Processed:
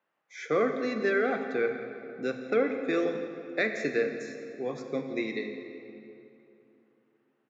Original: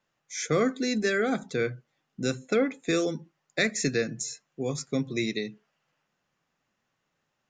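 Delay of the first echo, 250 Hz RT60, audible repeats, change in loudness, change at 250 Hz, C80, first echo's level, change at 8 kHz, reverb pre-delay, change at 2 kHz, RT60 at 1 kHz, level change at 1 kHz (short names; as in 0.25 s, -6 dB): 0.17 s, 3.2 s, 1, -1.5 dB, -3.5 dB, 7.0 dB, -16.0 dB, under -15 dB, 12 ms, -1.0 dB, 2.8 s, +0.5 dB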